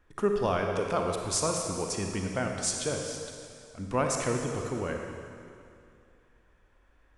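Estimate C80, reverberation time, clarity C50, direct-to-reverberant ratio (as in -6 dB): 4.0 dB, 2.5 s, 2.5 dB, 2.0 dB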